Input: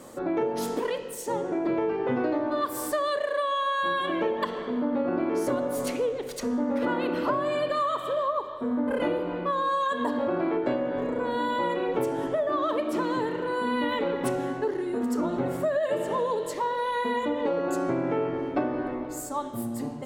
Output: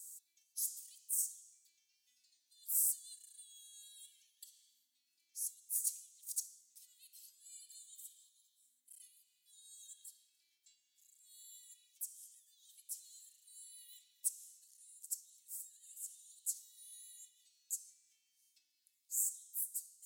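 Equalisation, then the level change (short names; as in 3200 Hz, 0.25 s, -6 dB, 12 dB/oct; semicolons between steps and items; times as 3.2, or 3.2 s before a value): inverse Chebyshev high-pass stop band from 1300 Hz, stop band 80 dB; +5.5 dB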